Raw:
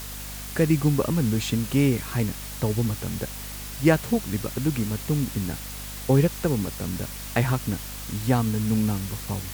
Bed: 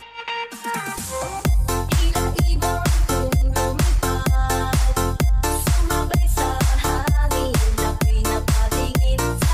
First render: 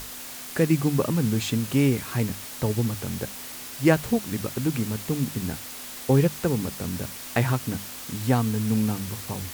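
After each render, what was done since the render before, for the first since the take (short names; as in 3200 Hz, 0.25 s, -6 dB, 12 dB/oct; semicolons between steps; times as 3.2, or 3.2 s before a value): notches 50/100/150/200 Hz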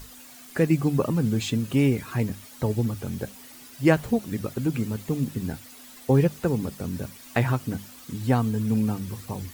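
denoiser 11 dB, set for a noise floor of -39 dBFS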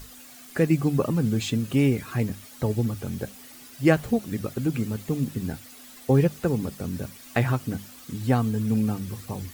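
notch 950 Hz, Q 14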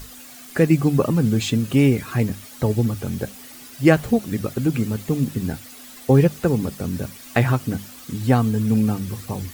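gain +5 dB; limiter -2 dBFS, peak gain reduction 1 dB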